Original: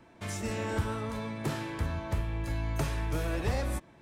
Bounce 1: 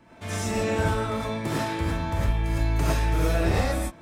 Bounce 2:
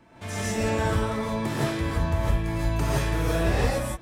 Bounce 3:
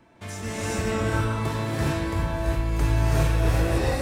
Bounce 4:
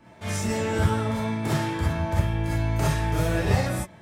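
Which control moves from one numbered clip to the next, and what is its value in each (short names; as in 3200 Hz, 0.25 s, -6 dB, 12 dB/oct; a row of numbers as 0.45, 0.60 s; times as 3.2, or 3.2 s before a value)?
non-linear reverb, gate: 130, 190, 440, 80 ms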